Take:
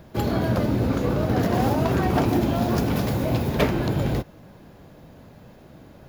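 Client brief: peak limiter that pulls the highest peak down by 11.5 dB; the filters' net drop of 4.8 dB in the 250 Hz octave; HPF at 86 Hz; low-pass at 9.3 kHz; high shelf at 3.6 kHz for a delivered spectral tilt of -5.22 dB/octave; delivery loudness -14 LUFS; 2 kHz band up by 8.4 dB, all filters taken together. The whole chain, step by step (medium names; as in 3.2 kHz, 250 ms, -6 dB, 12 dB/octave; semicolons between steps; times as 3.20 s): high-pass 86 Hz; low-pass 9.3 kHz; peaking EQ 250 Hz -6.5 dB; peaking EQ 2 kHz +8.5 dB; treble shelf 3.6 kHz +8.5 dB; trim +11.5 dB; peak limiter -4.5 dBFS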